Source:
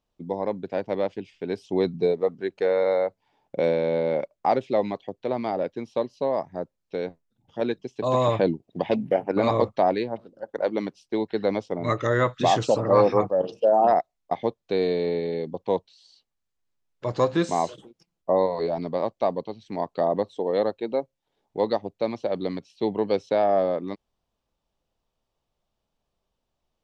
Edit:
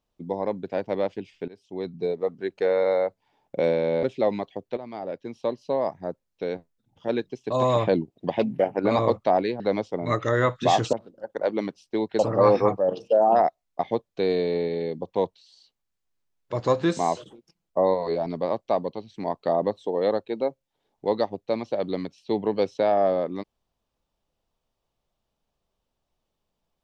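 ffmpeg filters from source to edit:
-filter_complex "[0:a]asplit=7[a][b][c][d][e][f][g];[a]atrim=end=1.48,asetpts=PTS-STARTPTS,afade=t=out:st=1.476:d=0.004:c=hsin:silence=0.0841395[h];[b]atrim=start=1.48:end=4.032,asetpts=PTS-STARTPTS,afade=t=in:d=1.08:silence=0.0841395[i];[c]atrim=start=4.548:end=5.29,asetpts=PTS-STARTPTS,afade=t=out:st=0.738:d=0.004:c=hsin:silence=0.211349[j];[d]atrim=start=5.29:end=10.122,asetpts=PTS-STARTPTS,afade=t=in:d=0.82:silence=0.211349[k];[e]atrim=start=11.378:end=12.712[l];[f]atrim=start=10.118:end=11.382[m];[g]atrim=start=12.708[n];[h][i]concat=n=2:v=0:a=1[o];[j][k]concat=n=2:v=0:a=1[p];[o][p]acrossfade=d=0.004:c1=hsin:c2=hsin[q];[q][l]acrossfade=d=0.004:c1=hsin:c2=hsin[r];[r][m]acrossfade=d=0.004:c1=hsin:c2=hsin[s];[s][n]acrossfade=d=0.004:c1=hsin:c2=hsin"

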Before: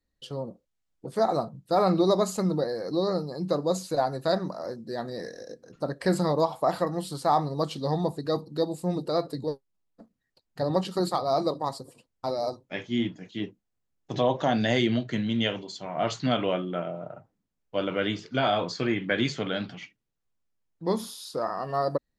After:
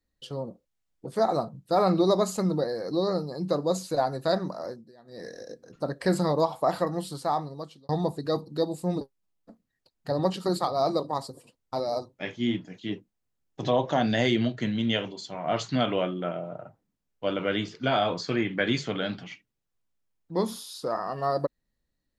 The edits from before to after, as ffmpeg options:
-filter_complex "[0:a]asplit=5[a][b][c][d][e];[a]atrim=end=4.92,asetpts=PTS-STARTPTS,afade=t=out:st=4.64:d=0.28:silence=0.0841395[f];[b]atrim=start=4.92:end=5.05,asetpts=PTS-STARTPTS,volume=-21.5dB[g];[c]atrim=start=5.05:end=7.89,asetpts=PTS-STARTPTS,afade=t=in:d=0.28:silence=0.0841395,afade=t=out:st=1.92:d=0.92[h];[d]atrim=start=7.89:end=9.012,asetpts=PTS-STARTPTS,afade=t=in:d=0.004:c=hsin[i];[e]atrim=start=9.518[j];[f][g][h][i]concat=n=4:v=0:a=1[k];[k][j]acrossfade=d=0.004:c1=hsin:c2=hsin"

